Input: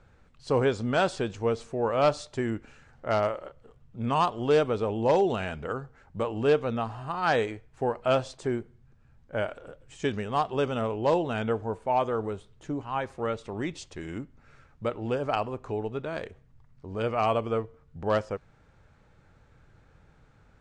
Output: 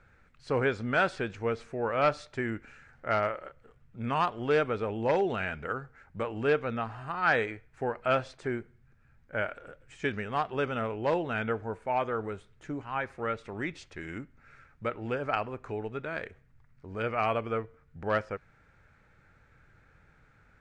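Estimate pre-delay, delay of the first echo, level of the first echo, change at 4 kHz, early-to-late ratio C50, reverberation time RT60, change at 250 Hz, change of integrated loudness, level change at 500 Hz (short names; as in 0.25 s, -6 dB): none, none, none, -4.5 dB, none, none, -4.0 dB, -3.0 dB, -4.0 dB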